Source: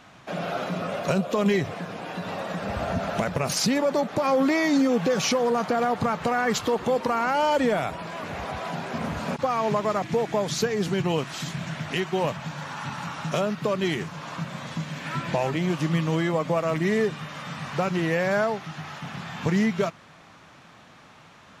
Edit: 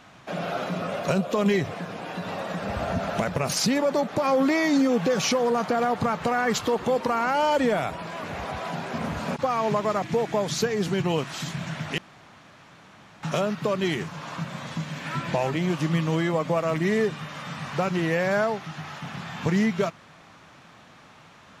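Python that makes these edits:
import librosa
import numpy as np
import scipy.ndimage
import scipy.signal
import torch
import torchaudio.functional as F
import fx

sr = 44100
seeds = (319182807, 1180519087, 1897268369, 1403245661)

y = fx.edit(x, sr, fx.room_tone_fill(start_s=11.98, length_s=1.25), tone=tone)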